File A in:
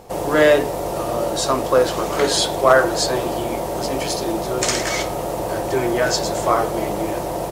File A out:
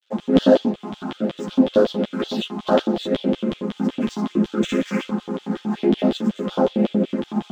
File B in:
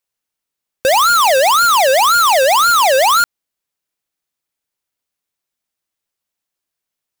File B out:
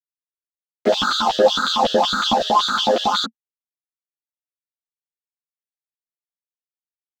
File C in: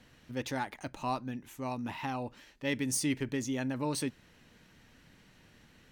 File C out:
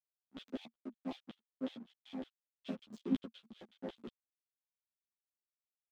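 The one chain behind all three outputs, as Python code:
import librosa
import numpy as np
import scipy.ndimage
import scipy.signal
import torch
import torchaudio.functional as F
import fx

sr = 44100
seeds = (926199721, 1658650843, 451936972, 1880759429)

y = fx.chord_vocoder(x, sr, chord='minor triad', root=53)
y = np.clip(y, -10.0 ** (-10.5 / 20.0), 10.0 ** (-10.5 / 20.0))
y = fx.env_phaser(y, sr, low_hz=160.0, high_hz=2200.0, full_db=-15.0)
y = fx.rider(y, sr, range_db=3, speed_s=2.0)
y = fx.backlash(y, sr, play_db=-37.0)
y = fx.filter_lfo_highpass(y, sr, shape='square', hz=5.4, low_hz=230.0, high_hz=3300.0, q=7.2)
y = fx.peak_eq(y, sr, hz=1200.0, db=3.5, octaves=0.99)
y = fx.ensemble(y, sr)
y = F.gain(torch.from_numpy(y), 1.5).numpy()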